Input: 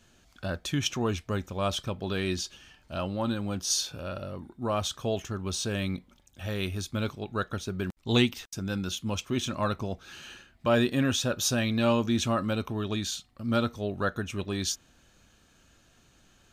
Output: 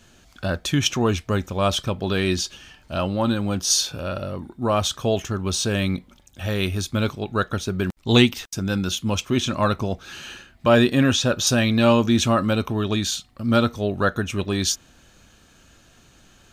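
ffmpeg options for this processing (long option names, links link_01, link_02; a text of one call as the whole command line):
ffmpeg -i in.wav -filter_complex "[0:a]asettb=1/sr,asplit=3[link_01][link_02][link_03];[link_01]atrim=end=9.274[link_04];[link_02]atrim=start=9.27:end=11.47,asetpts=PTS-STARTPTS,afade=type=in:duration=0.004:curve=qsin,afade=type=out:start_time=2.196:duration=0.004:curve=qsin,acrossover=split=7400[link_05][link_06];[link_06]acompressor=threshold=-52dB:ratio=4:attack=1:release=60[link_07];[link_05][link_07]amix=inputs=2:normalize=0[link_08];[link_03]atrim=start=11.466[link_09];[link_04][link_08]acrossfade=duration=0.004:curve1=hsin:curve2=qsin[link_10];[link_10][link_09]acrossfade=duration=0.004:curve1=qsin:curve2=hsin,volume=8dB" out.wav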